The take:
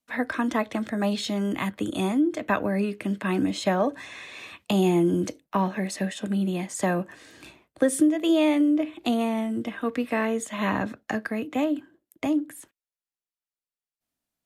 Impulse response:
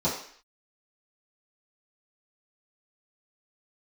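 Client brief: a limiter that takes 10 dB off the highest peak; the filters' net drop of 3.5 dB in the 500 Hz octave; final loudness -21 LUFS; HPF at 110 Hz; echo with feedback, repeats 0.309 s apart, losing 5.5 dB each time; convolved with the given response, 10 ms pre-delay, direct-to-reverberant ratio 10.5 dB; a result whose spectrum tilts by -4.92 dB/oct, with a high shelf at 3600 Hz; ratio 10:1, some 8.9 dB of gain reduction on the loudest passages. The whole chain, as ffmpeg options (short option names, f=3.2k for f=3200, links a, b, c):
-filter_complex "[0:a]highpass=110,equalizer=f=500:t=o:g=-5,highshelf=f=3.6k:g=3.5,acompressor=threshold=-26dB:ratio=10,alimiter=limit=-23.5dB:level=0:latency=1,aecho=1:1:309|618|927|1236|1545|1854|2163:0.531|0.281|0.149|0.079|0.0419|0.0222|0.0118,asplit=2[a][b];[1:a]atrim=start_sample=2205,adelay=10[c];[b][c]afir=irnorm=-1:irlink=0,volume=-21.5dB[d];[a][d]amix=inputs=2:normalize=0,volume=9.5dB"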